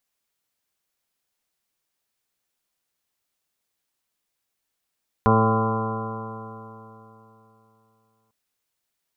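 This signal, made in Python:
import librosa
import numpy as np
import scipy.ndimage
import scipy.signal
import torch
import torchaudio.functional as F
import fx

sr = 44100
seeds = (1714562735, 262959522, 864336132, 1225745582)

y = fx.additive_stiff(sr, length_s=3.05, hz=110.0, level_db=-19.0, upper_db=(-0.5, -10.5, -2.0, -7.5, -12.5, -4.5, -19.0, 0, -9.0, -14.0, -10), decay_s=3.29, stiffness=0.00072)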